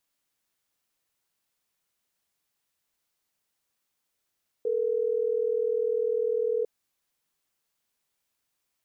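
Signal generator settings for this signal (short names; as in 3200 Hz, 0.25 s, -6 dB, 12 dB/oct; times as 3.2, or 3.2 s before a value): call progress tone ringback tone, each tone -26.5 dBFS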